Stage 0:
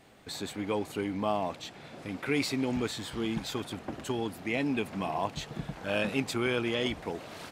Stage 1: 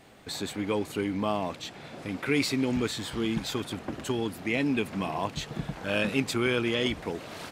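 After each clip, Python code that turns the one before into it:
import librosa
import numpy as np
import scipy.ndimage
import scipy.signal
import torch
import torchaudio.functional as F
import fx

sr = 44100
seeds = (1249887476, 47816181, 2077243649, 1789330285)

y = fx.dynamic_eq(x, sr, hz=750.0, q=1.9, threshold_db=-46.0, ratio=4.0, max_db=-5)
y = y * 10.0 ** (3.5 / 20.0)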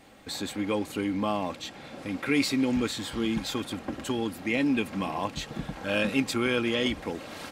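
y = x + 0.35 * np.pad(x, (int(3.7 * sr / 1000.0), 0))[:len(x)]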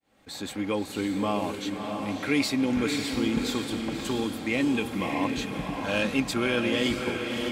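y = fx.fade_in_head(x, sr, length_s=0.52)
y = fx.echo_diffused(y, sr, ms=610, feedback_pct=40, wet_db=-4.5)
y = fx.attack_slew(y, sr, db_per_s=570.0)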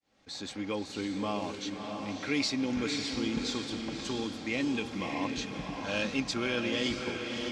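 y = fx.lowpass_res(x, sr, hz=5700.0, q=2.4)
y = y * 10.0 ** (-6.0 / 20.0)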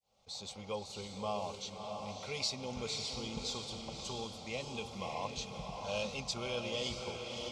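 y = fx.fixed_phaser(x, sr, hz=710.0, stages=4)
y = y * 10.0 ** (-1.0 / 20.0)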